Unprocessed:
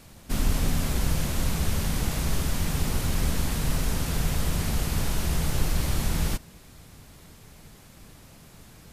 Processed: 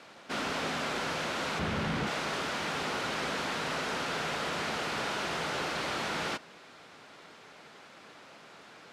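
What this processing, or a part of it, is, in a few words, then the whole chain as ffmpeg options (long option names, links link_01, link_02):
intercom: -filter_complex "[0:a]asettb=1/sr,asplit=3[link_01][link_02][link_03];[link_01]atrim=end=1.594[link_04];[link_02]atrim=start=1.59:end=2.07,asetpts=PTS-STARTPTS,afade=type=in:duration=0.004:curve=qsin,afade=type=out:start_time=0.476:duration=0.004:curve=qsin,bass=frequency=250:gain=14,treble=frequency=4000:gain=-6[link_05];[link_03]atrim=start=2.066[link_06];[link_04][link_05]acrossfade=duration=0.004:curve1=hsin:curve2=qsin[link_07];[link_07][link_06]acrossfade=duration=0.004:curve1=qsin:curve2=hsin,highpass=430,lowpass=3700,equalizer=frequency=1400:width_type=o:width=0.24:gain=4.5,asoftclip=type=tanh:threshold=-28dB,volume=4.5dB"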